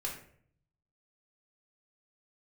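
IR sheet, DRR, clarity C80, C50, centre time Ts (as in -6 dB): -2.0 dB, 10.0 dB, 6.0 dB, 29 ms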